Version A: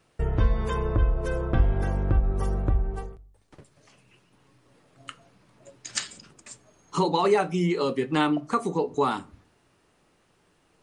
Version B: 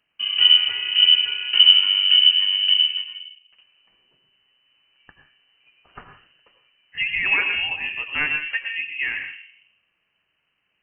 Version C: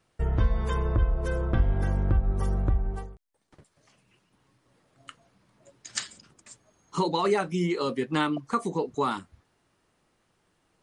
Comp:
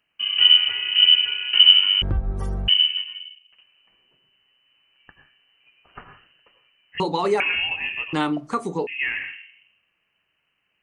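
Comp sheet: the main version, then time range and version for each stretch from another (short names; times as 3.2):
B
2.02–2.68 from C
7–7.4 from A
8.13–8.87 from A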